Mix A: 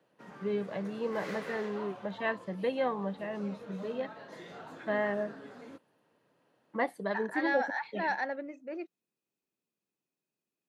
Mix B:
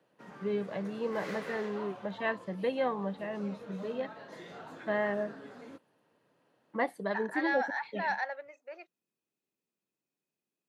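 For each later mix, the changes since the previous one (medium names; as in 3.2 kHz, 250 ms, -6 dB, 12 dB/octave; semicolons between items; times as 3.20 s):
second voice: add high-pass 590 Hz 24 dB/octave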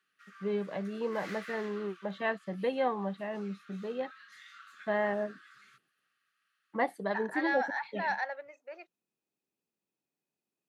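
first voice: add peaking EQ 790 Hz +4 dB 0.26 oct; background: add brick-wall FIR high-pass 1.1 kHz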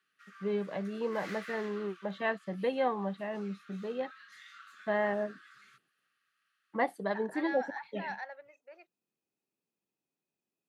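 second voice -7.5 dB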